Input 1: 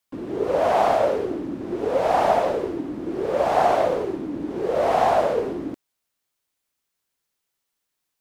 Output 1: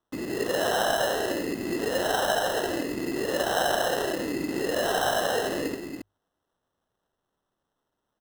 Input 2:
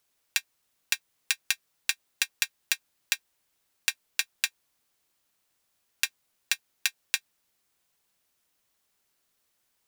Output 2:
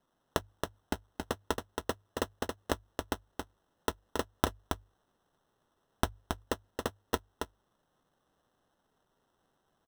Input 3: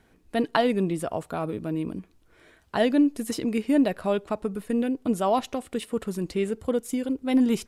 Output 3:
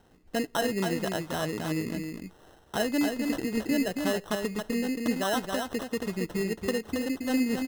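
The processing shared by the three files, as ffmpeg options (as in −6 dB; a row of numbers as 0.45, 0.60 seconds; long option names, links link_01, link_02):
-af "highshelf=frequency=6900:width_type=q:width=1.5:gain=-6,acompressor=threshold=-29dB:ratio=2,acrusher=samples=19:mix=1:aa=0.000001,bandreject=frequency=50:width_type=h:width=6,bandreject=frequency=100:width_type=h:width=6,aecho=1:1:274:0.562"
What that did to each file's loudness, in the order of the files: −4.5, −7.5, −3.5 LU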